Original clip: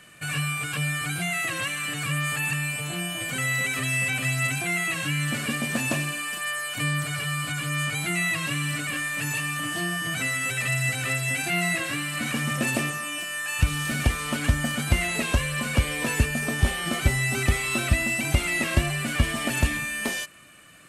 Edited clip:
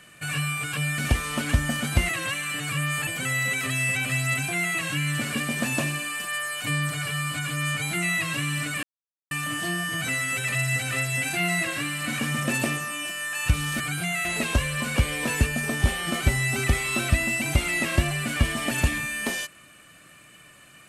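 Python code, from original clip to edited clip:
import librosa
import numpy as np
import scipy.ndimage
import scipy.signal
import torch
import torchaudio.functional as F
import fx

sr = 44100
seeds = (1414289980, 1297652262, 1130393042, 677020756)

y = fx.edit(x, sr, fx.swap(start_s=0.98, length_s=0.45, other_s=13.93, other_length_s=1.11),
    fx.cut(start_s=2.41, length_s=0.79),
    fx.silence(start_s=8.96, length_s=0.48), tone=tone)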